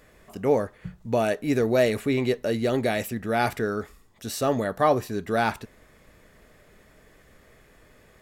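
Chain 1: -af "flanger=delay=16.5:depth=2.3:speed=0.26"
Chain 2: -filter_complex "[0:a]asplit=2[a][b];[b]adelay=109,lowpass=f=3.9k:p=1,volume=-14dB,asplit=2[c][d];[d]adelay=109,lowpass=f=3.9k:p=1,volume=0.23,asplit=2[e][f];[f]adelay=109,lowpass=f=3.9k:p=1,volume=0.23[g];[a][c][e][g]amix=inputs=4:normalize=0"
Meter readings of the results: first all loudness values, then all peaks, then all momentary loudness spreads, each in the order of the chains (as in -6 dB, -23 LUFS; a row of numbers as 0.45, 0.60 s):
-28.0, -25.0 LUFS; -11.0, -8.5 dBFS; 13, 12 LU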